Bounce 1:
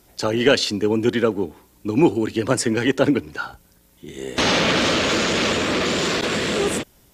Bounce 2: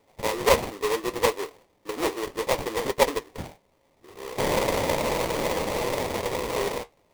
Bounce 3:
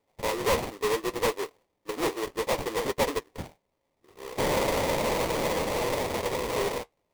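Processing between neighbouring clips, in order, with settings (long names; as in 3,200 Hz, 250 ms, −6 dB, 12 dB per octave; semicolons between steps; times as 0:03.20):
four-pole ladder high-pass 440 Hz, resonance 55%; sample-rate reduction 1,500 Hz, jitter 20%; flanger 0.67 Hz, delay 6.7 ms, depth 8.9 ms, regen −56%; level +5.5 dB
leveller curve on the samples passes 1; soft clipping −20 dBFS, distortion −11 dB; expander for the loud parts 1.5 to 1, over −41 dBFS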